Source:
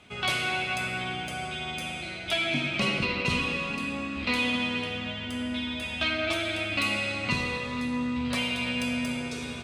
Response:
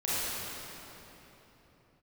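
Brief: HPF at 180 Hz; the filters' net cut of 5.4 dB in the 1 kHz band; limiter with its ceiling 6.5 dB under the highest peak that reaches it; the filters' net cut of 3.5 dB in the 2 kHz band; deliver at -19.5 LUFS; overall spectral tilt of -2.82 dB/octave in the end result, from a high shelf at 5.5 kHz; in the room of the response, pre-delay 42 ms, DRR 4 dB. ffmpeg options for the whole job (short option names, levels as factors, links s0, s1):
-filter_complex "[0:a]highpass=180,equalizer=f=1000:t=o:g=-6.5,equalizer=f=2000:t=o:g=-5,highshelf=f=5500:g=7.5,alimiter=limit=0.075:level=0:latency=1,asplit=2[s0][s1];[1:a]atrim=start_sample=2205,adelay=42[s2];[s1][s2]afir=irnorm=-1:irlink=0,volume=0.2[s3];[s0][s3]amix=inputs=2:normalize=0,volume=3.76"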